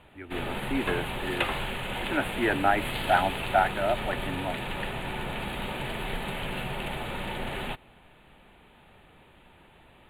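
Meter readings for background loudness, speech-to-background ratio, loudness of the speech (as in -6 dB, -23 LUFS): -33.0 LUFS, 3.5 dB, -29.5 LUFS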